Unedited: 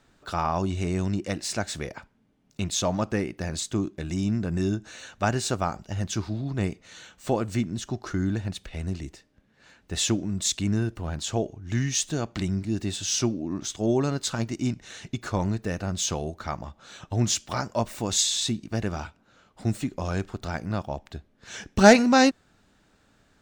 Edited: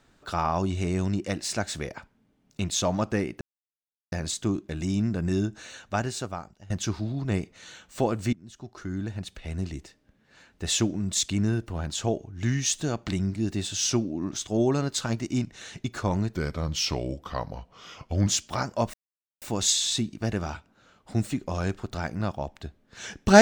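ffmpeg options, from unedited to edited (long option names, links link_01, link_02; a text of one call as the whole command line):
ffmpeg -i in.wav -filter_complex "[0:a]asplit=7[link_01][link_02][link_03][link_04][link_05][link_06][link_07];[link_01]atrim=end=3.41,asetpts=PTS-STARTPTS,afade=type=out:start_time=3.406:duration=0.004:curve=hsin,apad=pad_dur=0.71[link_08];[link_02]atrim=start=3.41:end=5.99,asetpts=PTS-STARTPTS,afade=type=in:duration=0.004:curve=hsin,afade=type=out:start_time=1.5:duration=1.08:silence=0.105925[link_09];[link_03]atrim=start=5.99:end=7.62,asetpts=PTS-STARTPTS,afade=type=in:duration=0.004:curve=hsin:silence=0.105925,afade=type=out:start_time=1.626:duration=0.004:curve=hsin:silence=0.0891251[link_10];[link_04]atrim=start=7.62:end=15.644,asetpts=PTS-STARTPTS,afade=type=in:duration=1.34:silence=0.0891251[link_11];[link_05]atrim=start=15.64:end=17.25,asetpts=PTS-STARTPTS,asetrate=37044,aresample=44100[link_12];[link_06]atrim=start=17.246:end=17.92,asetpts=PTS-STARTPTS,afade=type=out:start_time=0.67:duration=0.004:curve=hsin,apad=pad_dur=0.48[link_13];[link_07]atrim=start=17.92,asetpts=PTS-STARTPTS,afade=type=in:duration=0.004:curve=hsin[link_14];[link_08][link_09][link_10][link_11]concat=n=4:v=0:a=1[link_15];[link_15][link_12]acrossfade=duration=0.004:curve1=hsin:curve2=hsin[link_16];[link_13][link_14]concat=n=2:v=0:a=1[link_17];[link_16][link_17]acrossfade=duration=0.004:curve1=hsin:curve2=hsin" out.wav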